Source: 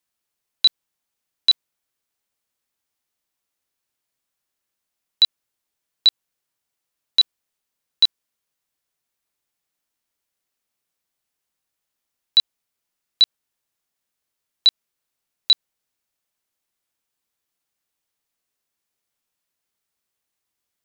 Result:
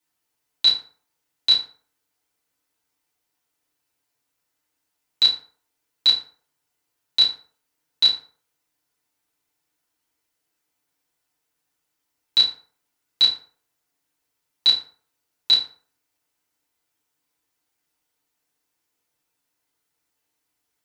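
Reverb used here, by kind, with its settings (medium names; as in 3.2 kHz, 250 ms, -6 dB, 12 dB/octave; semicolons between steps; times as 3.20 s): FDN reverb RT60 0.47 s, low-frequency decay 0.9×, high-frequency decay 0.6×, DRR -7.5 dB; trim -3.5 dB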